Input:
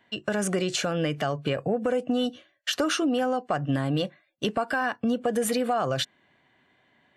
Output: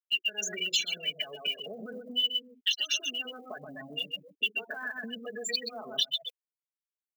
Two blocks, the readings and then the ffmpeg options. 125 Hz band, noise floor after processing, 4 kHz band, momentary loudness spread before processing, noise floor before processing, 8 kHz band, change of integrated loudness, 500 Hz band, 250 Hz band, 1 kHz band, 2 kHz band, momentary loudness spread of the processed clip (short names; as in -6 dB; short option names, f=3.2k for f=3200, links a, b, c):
-24.5 dB, under -85 dBFS, +5.5 dB, 5 LU, -67 dBFS, -2.0 dB, -4.0 dB, -16.0 dB, -19.0 dB, -18.5 dB, -1.5 dB, 11 LU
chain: -filter_complex "[0:a]alimiter=level_in=1.5dB:limit=-24dB:level=0:latency=1:release=74,volume=-1.5dB,highpass=190,aresample=16000,aresample=44100,asplit=2[a][b];[b]aecho=0:1:127|254|381|508|635|762:0.562|0.259|0.119|0.0547|0.0252|0.0116[c];[a][c]amix=inputs=2:normalize=0,afftfilt=real='re*gte(hypot(re,im),0.0282)':imag='im*gte(hypot(re,im),0.0282)':win_size=1024:overlap=0.75,areverse,acompressor=mode=upward:threshold=-36dB:ratio=2.5,areverse,highshelf=f=1.8k:t=q:w=3:g=13,aphaser=in_gain=1:out_gain=1:delay=3.1:decay=0.34:speed=1:type=triangular,acompressor=threshold=-38dB:ratio=4,aemphasis=mode=production:type=riaa,aecho=1:1:4.7:0.98"